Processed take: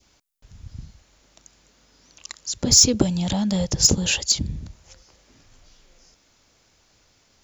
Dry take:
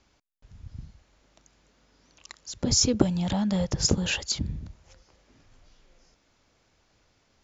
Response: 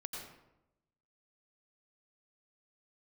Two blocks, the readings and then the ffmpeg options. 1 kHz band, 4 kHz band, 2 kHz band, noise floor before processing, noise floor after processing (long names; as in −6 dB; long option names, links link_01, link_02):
+1.5 dB, +8.0 dB, +3.5 dB, −68 dBFS, −62 dBFS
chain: -filter_complex "[0:a]highshelf=frequency=4600:gain=11.5,asplit=2[link_01][link_02];[link_02]volume=14.5dB,asoftclip=hard,volume=-14.5dB,volume=-4dB[link_03];[link_01][link_03]amix=inputs=2:normalize=0,adynamicequalizer=threshold=0.00891:dfrequency=1400:dqfactor=1:tfrequency=1400:tqfactor=1:attack=5:release=100:ratio=0.375:range=2.5:mode=cutabove:tftype=bell,volume=-1dB"